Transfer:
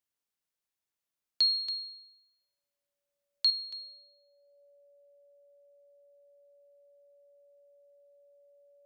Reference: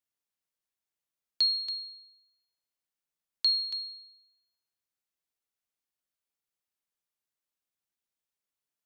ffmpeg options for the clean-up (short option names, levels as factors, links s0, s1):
-af "bandreject=f=570:w=30,asetnsamples=n=441:p=0,asendcmd='3.5 volume volume 7dB',volume=1"